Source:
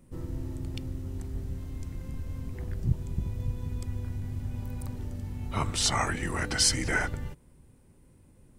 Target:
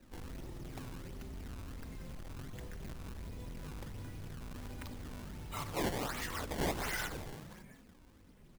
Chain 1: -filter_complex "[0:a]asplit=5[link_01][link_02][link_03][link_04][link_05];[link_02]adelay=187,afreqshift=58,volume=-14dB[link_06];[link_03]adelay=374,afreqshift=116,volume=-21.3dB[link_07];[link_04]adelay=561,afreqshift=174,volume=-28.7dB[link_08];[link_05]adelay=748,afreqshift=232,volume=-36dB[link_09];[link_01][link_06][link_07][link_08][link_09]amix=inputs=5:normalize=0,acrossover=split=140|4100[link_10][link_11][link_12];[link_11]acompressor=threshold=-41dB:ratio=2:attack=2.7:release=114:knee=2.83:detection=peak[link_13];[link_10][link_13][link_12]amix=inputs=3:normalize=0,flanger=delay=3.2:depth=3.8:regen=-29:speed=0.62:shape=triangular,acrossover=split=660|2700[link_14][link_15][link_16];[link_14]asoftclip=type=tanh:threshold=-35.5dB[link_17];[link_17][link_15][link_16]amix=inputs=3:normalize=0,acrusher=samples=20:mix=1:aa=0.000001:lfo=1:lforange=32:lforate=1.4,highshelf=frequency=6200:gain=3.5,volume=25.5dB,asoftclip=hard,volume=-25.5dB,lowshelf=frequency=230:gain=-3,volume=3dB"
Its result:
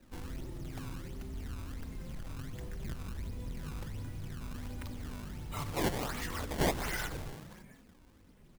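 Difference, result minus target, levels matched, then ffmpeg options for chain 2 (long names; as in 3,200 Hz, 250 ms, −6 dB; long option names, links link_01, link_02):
gain into a clipping stage and back: distortion −9 dB; soft clipping: distortion −5 dB
-filter_complex "[0:a]asplit=5[link_01][link_02][link_03][link_04][link_05];[link_02]adelay=187,afreqshift=58,volume=-14dB[link_06];[link_03]adelay=374,afreqshift=116,volume=-21.3dB[link_07];[link_04]adelay=561,afreqshift=174,volume=-28.7dB[link_08];[link_05]adelay=748,afreqshift=232,volume=-36dB[link_09];[link_01][link_06][link_07][link_08][link_09]amix=inputs=5:normalize=0,acrossover=split=140|4100[link_10][link_11][link_12];[link_11]acompressor=threshold=-41dB:ratio=2:attack=2.7:release=114:knee=2.83:detection=peak[link_13];[link_10][link_13][link_12]amix=inputs=3:normalize=0,flanger=delay=3.2:depth=3.8:regen=-29:speed=0.62:shape=triangular,acrossover=split=660|2700[link_14][link_15][link_16];[link_14]asoftclip=type=tanh:threshold=-43dB[link_17];[link_17][link_15][link_16]amix=inputs=3:normalize=0,acrusher=samples=20:mix=1:aa=0.000001:lfo=1:lforange=32:lforate=1.4,highshelf=frequency=6200:gain=3.5,volume=32.5dB,asoftclip=hard,volume=-32.5dB,lowshelf=frequency=230:gain=-3,volume=3dB"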